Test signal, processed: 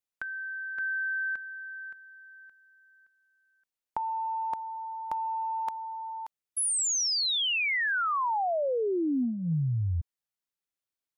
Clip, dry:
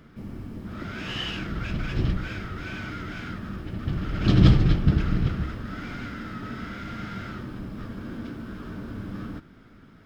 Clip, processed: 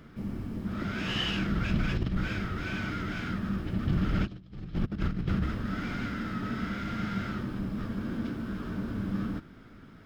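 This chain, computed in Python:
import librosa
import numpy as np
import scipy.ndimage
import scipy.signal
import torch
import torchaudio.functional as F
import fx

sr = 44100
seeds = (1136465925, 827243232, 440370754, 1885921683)

y = fx.dynamic_eq(x, sr, hz=200.0, q=3.6, threshold_db=-43.0, ratio=4.0, max_db=6)
y = fx.over_compress(y, sr, threshold_db=-25.0, ratio=-0.5)
y = y * librosa.db_to_amplitude(-3.0)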